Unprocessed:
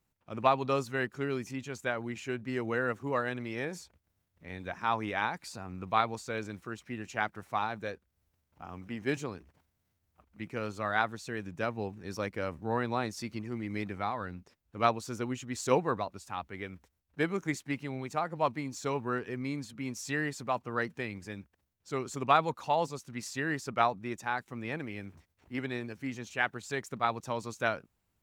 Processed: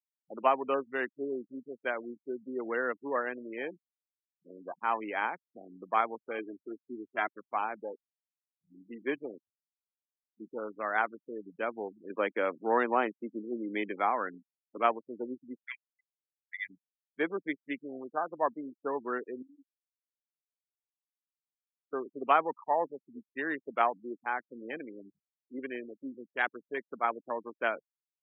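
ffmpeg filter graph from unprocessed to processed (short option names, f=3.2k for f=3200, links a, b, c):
-filter_complex "[0:a]asettb=1/sr,asplit=3[a][b][c];[a]atrim=end=6.384[d];[b]atrim=start=6.38:end=7.28,asetpts=PTS-STARTPTS,afade=t=in:d=0.004:c=qsin,afade=t=out:st=0.896:d=0.004:c=qsin,asubboost=boost=5.5:cutoff=180,aecho=1:1:3:0.68,atrim=end_sample=39690[e];[c]atrim=start=7.276[f];[d][e]acrossfade=d=0.004:c1=hsin:c2=qsin[g];[g][f]acrossfade=d=0.004:c1=qsin:c2=hsin,asettb=1/sr,asplit=3[h][i][j];[h]atrim=end=12.104[k];[i]atrim=start=12.1:end=14.78,asetpts=PTS-STARTPTS,afade=t=in:d=0.004:c=qsin,afade=t=out:st=2.676:d=0.004:c=qsin,aemphasis=mode=production:type=50fm,acontrast=45,highpass=160,lowpass=2.8k[l];[j]atrim=start=14.776[m];[k][l]acrossfade=d=0.004:c1=hsin:c2=qsin[n];[n][m]acrossfade=d=0.004:c1=qsin:c2=hsin,asettb=1/sr,asplit=3[o][p][q];[o]atrim=end=15.634[r];[p]atrim=start=15.63:end=16.67,asetpts=PTS-STARTPTS,afade=t=in:d=0.004:c=qsin,afade=t=out:st=1.036:d=0.004:c=qsin,lowpass=f=2k:t=q:w=12,aderivative,aecho=1:1:3:0.35,atrim=end_sample=45864[s];[q]atrim=start=16.666[t];[r][s]acrossfade=d=0.004:c1=hsin:c2=qsin[u];[u][t]acrossfade=d=0.004:c1=qsin:c2=hsin,asettb=1/sr,asplit=3[v][w][x];[v]atrim=end=19.424[y];[w]atrim=start=19.42:end=21.93,asetpts=PTS-STARTPTS,afade=t=in:d=0.004:c=qsin,afade=t=out:st=2.506:d=0.004:c=qsin,lowshelf=f=420:g=-9,acompressor=threshold=-43dB:ratio=4:attack=3.2:release=140:knee=1:detection=peak,flanger=delay=3.6:depth=9.4:regen=-55:speed=1.8:shape=triangular[z];[x]atrim=start=21.926[aa];[y][z]acrossfade=d=0.004:c1=hsin:c2=qsin[ab];[ab][aa]acrossfade=d=0.004:c1=qsin:c2=hsin,afwtdn=0.0126,afftfilt=real='re*gte(hypot(re,im),0.0112)':imag='im*gte(hypot(re,im),0.0112)':win_size=1024:overlap=0.75,highpass=f=270:w=0.5412,highpass=f=270:w=1.3066"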